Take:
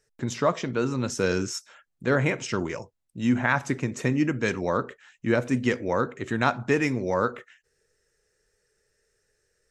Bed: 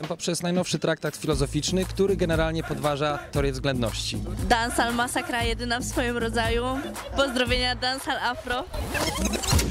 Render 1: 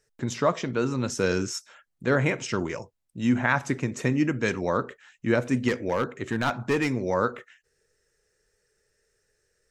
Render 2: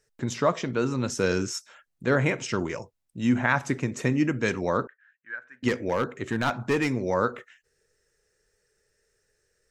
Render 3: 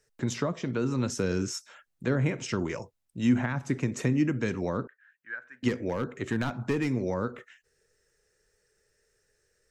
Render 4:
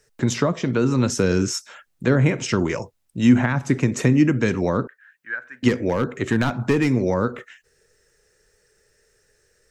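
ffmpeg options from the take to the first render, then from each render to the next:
-filter_complex "[0:a]asettb=1/sr,asplit=3[s0][s1][s2];[s0]atrim=end=5.684[s3];[s1]atrim=start=5.68:end=6.91,asetpts=PTS-STARTPTS,afade=t=in:d=0.004:c=qsin,afade=t=out:st=1.226:d=0.004:c=qsin,asoftclip=type=hard:threshold=0.119[s4];[s2]atrim=start=6.906[s5];[s3][s4]acrossfade=d=0.004:c1=hsin:c2=qsin[s6];[s6][s5]acrossfade=d=0.004:c1=qsin:c2=hsin"
-filter_complex "[0:a]asettb=1/sr,asplit=3[s0][s1][s2];[s0]atrim=end=4.874[s3];[s1]atrim=start=4.87:end=5.63,asetpts=PTS-STARTPTS,afade=t=in:d=0.004:c=qsin,afade=t=out:st=0.756:d=0.004:c=qsin,bandpass=f=1600:t=q:w=11[s4];[s2]atrim=start=5.626[s5];[s3][s4]acrossfade=d=0.004:c1=hsin:c2=qsin[s6];[s6][s5]acrossfade=d=0.004:c1=qsin:c2=hsin"
-filter_complex "[0:a]acrossover=split=340[s0][s1];[s1]acompressor=threshold=0.0251:ratio=6[s2];[s0][s2]amix=inputs=2:normalize=0"
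-af "volume=2.82"

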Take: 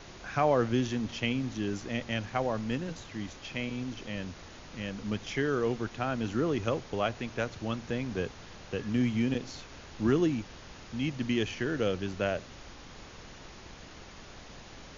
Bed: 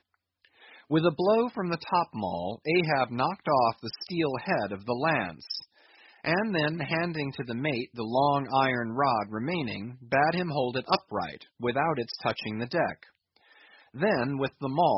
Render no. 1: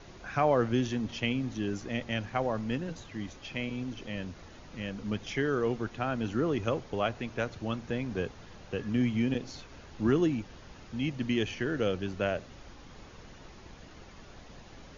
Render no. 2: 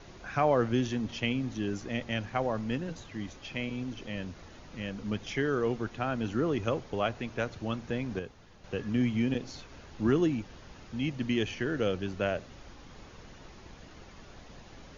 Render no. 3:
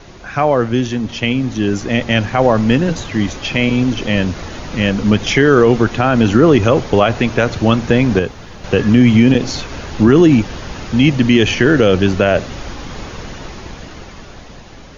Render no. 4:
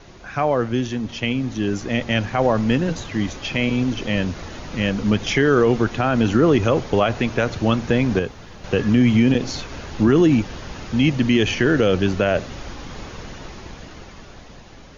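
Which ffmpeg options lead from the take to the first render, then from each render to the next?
-af "afftdn=nr=6:nf=-49"
-filter_complex "[0:a]asplit=3[s0][s1][s2];[s0]atrim=end=8.192[s3];[s1]atrim=start=8.188:end=8.642,asetpts=PTS-STARTPTS,volume=0.447[s4];[s2]atrim=start=8.638[s5];[s3][s4]acrossfade=d=0.004:c1=hsin:c2=hsin[s6];[s6][s5]acrossfade=d=0.004:c1=hsin:c2=hsin"
-af "dynaudnorm=f=340:g=11:m=3.55,alimiter=level_in=3.76:limit=0.891:release=50:level=0:latency=1"
-af "volume=0.501"

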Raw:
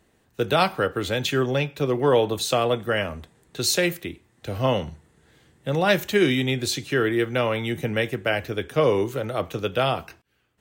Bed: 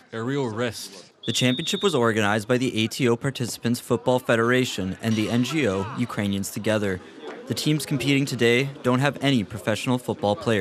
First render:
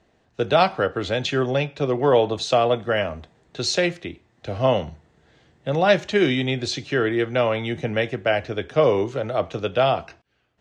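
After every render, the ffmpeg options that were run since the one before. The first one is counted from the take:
-af "lowpass=f=6300:w=0.5412,lowpass=f=6300:w=1.3066,equalizer=f=670:w=2.9:g=6.5"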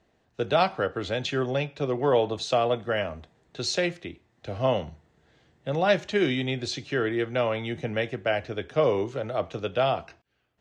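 -af "volume=0.562"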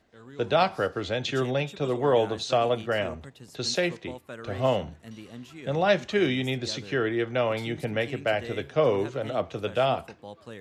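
-filter_complex "[1:a]volume=0.0944[s0];[0:a][s0]amix=inputs=2:normalize=0"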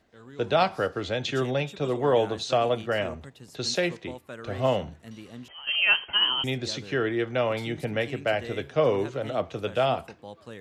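-filter_complex "[0:a]asettb=1/sr,asplit=3[s0][s1][s2];[s0]atrim=end=5.484[s3];[s1]atrim=start=5.48:end=6.44,asetpts=PTS-STARTPTS,afade=t=in:d=0.004:c=qsin,afade=t=out:st=0.956:d=0.004:c=qsin,lowpass=f=2800:t=q:w=0.5098,lowpass=f=2800:t=q:w=0.6013,lowpass=f=2800:t=q:w=0.9,lowpass=f=2800:t=q:w=2.563,afreqshift=-3300[s4];[s2]atrim=start=6.436[s5];[s3][s4]acrossfade=d=0.004:c1=hsin:c2=qsin[s6];[s6][s5]acrossfade=d=0.004:c1=qsin:c2=hsin"

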